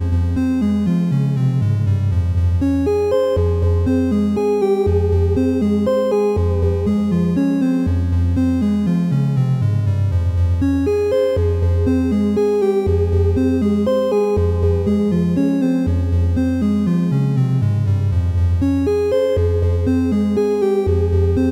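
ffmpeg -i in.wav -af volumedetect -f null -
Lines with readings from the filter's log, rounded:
mean_volume: -15.9 dB
max_volume: -6.0 dB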